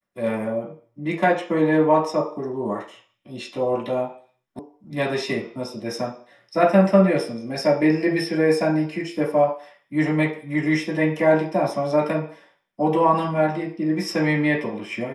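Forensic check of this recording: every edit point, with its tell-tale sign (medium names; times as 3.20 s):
4.59 s: sound stops dead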